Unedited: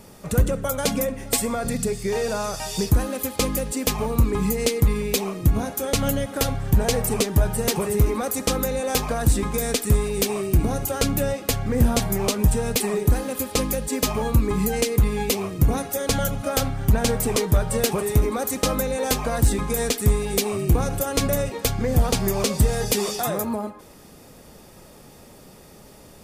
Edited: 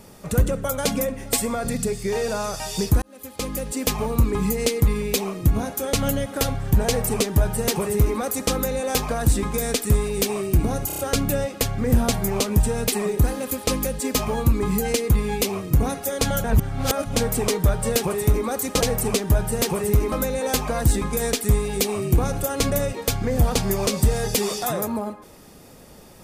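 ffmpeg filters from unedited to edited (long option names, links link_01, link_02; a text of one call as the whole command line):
ffmpeg -i in.wav -filter_complex "[0:a]asplit=10[link_01][link_02][link_03][link_04][link_05][link_06][link_07][link_08][link_09][link_10];[link_01]atrim=end=3.02,asetpts=PTS-STARTPTS,afade=type=out:start_time=3.016:duration=0.004:curve=hsin[link_11];[link_02]atrim=start=3.02:end=10.902,asetpts=PTS-STARTPTS,afade=type=in:duration=0.8[link_12];[link_03]atrim=start=10.868:end=10.902[link_13];[link_04]atrim=start=10.868:end=10.902[link_14];[link_05]atrim=start=10.868:end=10.902[link_15];[link_06]atrim=start=10.868:end=16.322[link_16];[link_07]atrim=start=16.318:end=17.042,asetpts=PTS-STARTPTS,areverse[link_17];[link_08]atrim=start=17.038:end=18.692[link_18];[link_09]atrim=start=6.868:end=8.182[link_19];[link_10]atrim=start=18.688[link_20];[link_11][link_12]concat=n=2:v=0:a=1[link_21];[link_21][link_13]acrossfade=duration=0.004:curve1=hsin:curve2=hsin[link_22];[link_22][link_14]acrossfade=duration=0.004:curve1=hsin:curve2=hsin[link_23];[link_23][link_15]acrossfade=duration=0.004:curve1=hsin:curve2=hsin[link_24];[link_24][link_16]acrossfade=duration=0.004:curve1=hsin:curve2=hsin[link_25];[link_25][link_17]acrossfade=duration=0.004:curve1=hsin:curve2=hsin[link_26];[link_26][link_18]acrossfade=duration=0.004:curve1=hsin:curve2=hsin[link_27];[link_27][link_19]acrossfade=duration=0.004:curve1=hsin:curve2=hsin[link_28];[link_28][link_20]acrossfade=duration=0.004:curve1=hsin:curve2=hsin" out.wav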